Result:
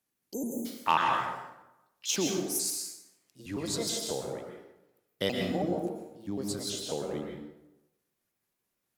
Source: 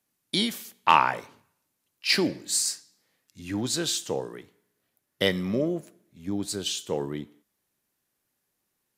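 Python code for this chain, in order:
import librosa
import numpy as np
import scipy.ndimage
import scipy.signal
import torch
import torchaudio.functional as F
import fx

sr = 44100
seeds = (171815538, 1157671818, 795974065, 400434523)

y = fx.pitch_trill(x, sr, semitones=5.0, every_ms=108)
y = fx.dynamic_eq(y, sr, hz=2000.0, q=1.2, threshold_db=-41.0, ratio=4.0, max_db=-5)
y = fx.rev_plate(y, sr, seeds[0], rt60_s=0.94, hf_ratio=0.65, predelay_ms=105, drr_db=1.0)
y = fx.spec_erase(y, sr, start_s=0.33, length_s=0.33, low_hz=1000.0, high_hz=6100.0)
y = y * librosa.db_to_amplitude(-5.5)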